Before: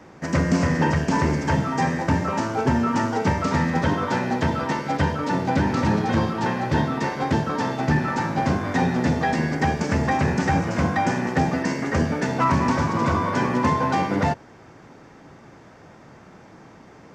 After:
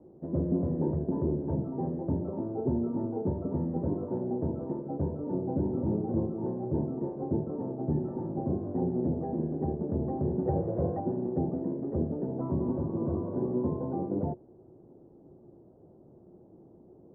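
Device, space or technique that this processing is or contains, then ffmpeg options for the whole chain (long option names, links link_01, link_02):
under water: -filter_complex "[0:a]asettb=1/sr,asplit=3[link_01][link_02][link_03];[link_01]atrim=end=10.454[link_04];[link_02]atrim=start=10.45:end=11,asetpts=PTS-STARTPTS,afade=type=in:duration=0.004:curve=qsin,afade=type=out:start_time=0.546:duration=0.004:curve=qsin,equalizer=frequency=125:width_type=o:width=1:gain=5,equalizer=frequency=250:width_type=o:width=1:gain=-9,equalizer=frequency=500:width_type=o:width=1:gain=10,equalizer=frequency=2000:width_type=o:width=1:gain=10,equalizer=frequency=4000:width_type=o:width=1:gain=-11[link_05];[link_03]atrim=start=10.996[link_06];[link_04][link_05]acrossfade=duration=0.004:curve1=hsin:curve2=qsin[link_07];[link_07][link_06]acrossfade=duration=0.004:curve1=qsin:curve2=hsin,lowpass=frequency=630:width=0.5412,lowpass=frequency=630:width=1.3066,equalizer=frequency=360:width_type=o:width=0.26:gain=10,volume=-9dB"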